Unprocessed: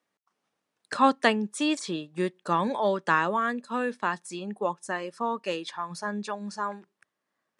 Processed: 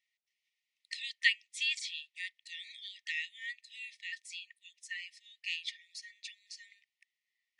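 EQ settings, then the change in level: brick-wall FIR high-pass 1800 Hz; Bessel low-pass 4400 Hz, order 2; +2.0 dB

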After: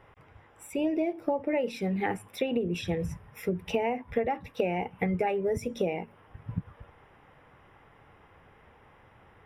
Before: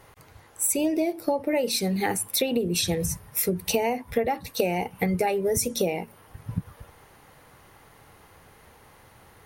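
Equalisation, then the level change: polynomial smoothing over 25 samples; -3.5 dB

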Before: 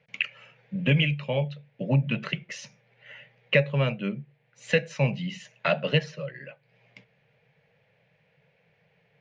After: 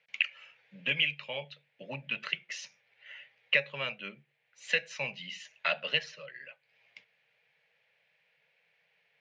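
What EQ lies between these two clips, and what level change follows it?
band-pass 3600 Hz, Q 0.59; 0.0 dB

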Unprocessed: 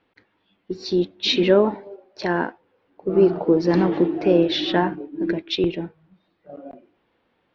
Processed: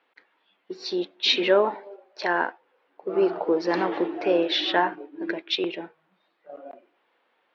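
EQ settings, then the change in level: Bessel high-pass 730 Hz, order 2; high shelf 5100 Hz -10 dB; +3.5 dB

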